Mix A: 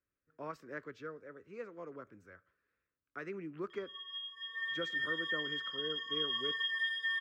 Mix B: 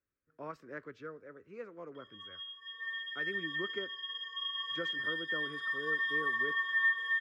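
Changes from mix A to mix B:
background: entry -1.75 s; master: add treble shelf 4.6 kHz -6.5 dB

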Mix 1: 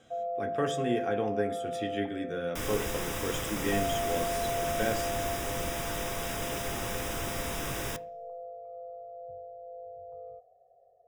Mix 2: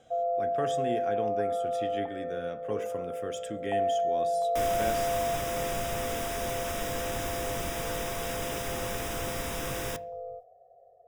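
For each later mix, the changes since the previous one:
speech: send -8.0 dB; first sound +5.0 dB; second sound: entry +2.00 s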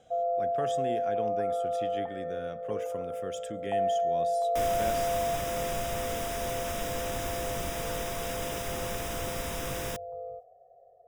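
reverb: off

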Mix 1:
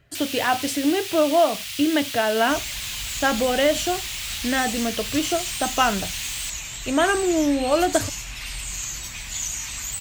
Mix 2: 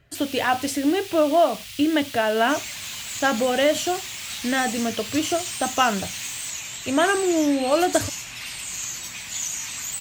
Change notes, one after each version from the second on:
first sound -6.0 dB; second sound: add high-pass 150 Hz 12 dB/octave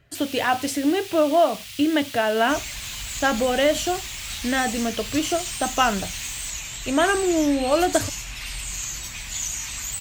second sound: remove high-pass 150 Hz 12 dB/octave

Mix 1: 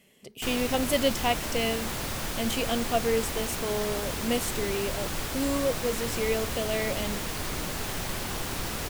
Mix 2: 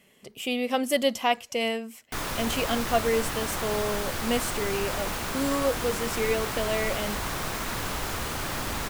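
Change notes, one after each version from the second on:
background: entry +1.70 s; master: add peaking EQ 1.2 kHz +5.5 dB 1.4 oct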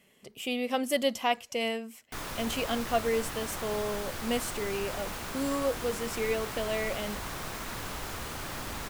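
speech -3.5 dB; background -6.5 dB

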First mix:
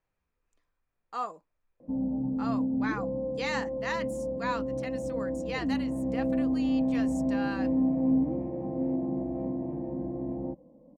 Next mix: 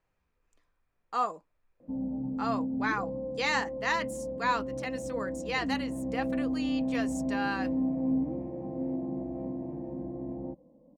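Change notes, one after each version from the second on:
speech +4.5 dB; background -3.5 dB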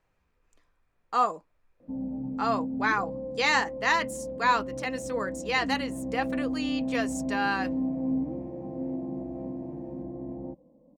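speech +5.0 dB

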